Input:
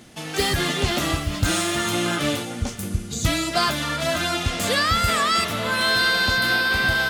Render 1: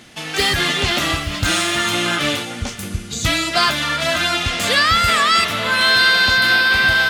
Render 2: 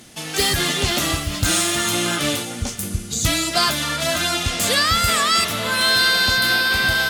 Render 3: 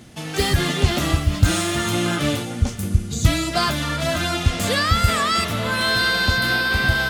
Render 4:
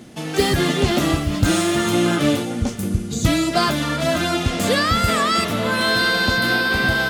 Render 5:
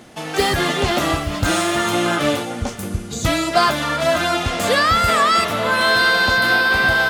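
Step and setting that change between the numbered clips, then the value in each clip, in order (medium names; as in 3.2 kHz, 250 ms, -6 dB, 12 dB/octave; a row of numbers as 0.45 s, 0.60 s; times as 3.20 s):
peaking EQ, frequency: 2.5 kHz, 13 kHz, 74 Hz, 260 Hz, 750 Hz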